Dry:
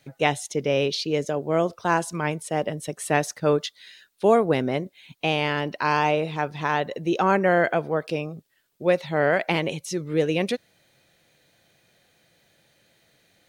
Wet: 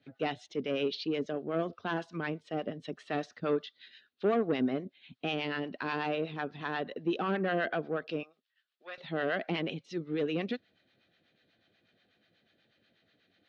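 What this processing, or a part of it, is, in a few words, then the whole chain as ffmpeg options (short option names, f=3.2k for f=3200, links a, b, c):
guitar amplifier with harmonic tremolo: -filter_complex "[0:a]acrossover=split=700[a][b];[a]aeval=exprs='val(0)*(1-0.7/2+0.7/2*cos(2*PI*8.2*n/s))':c=same[c];[b]aeval=exprs='val(0)*(1-0.7/2-0.7/2*cos(2*PI*8.2*n/s))':c=same[d];[c][d]amix=inputs=2:normalize=0,asoftclip=type=tanh:threshold=-18.5dB,highpass=84,equalizer=f=140:t=q:w=4:g=-9,equalizer=f=250:t=q:w=4:g=5,equalizer=f=550:t=q:w=4:g=-5,equalizer=f=930:t=q:w=4:g=-10,equalizer=f=2.2k:t=q:w=4:g=-5,lowpass=f=3.9k:w=0.5412,lowpass=f=3.9k:w=1.3066,asettb=1/sr,asplit=3[e][f][g];[e]atrim=end=8.234[h];[f]atrim=start=8.23:end=8.98,asetpts=PTS-STARTPTS,afade=t=in:d=0.004:c=qsin,afade=t=out:st=0.746:d=0.004:c=qsin,highpass=1.3k[i];[g]atrim=start=8.976[j];[h][i]acrossfade=d=0.004:c1=hsin:c2=qsin[k];[k][j]acrossfade=d=0.004:c1=qsin:c2=hsin,volume=-2dB"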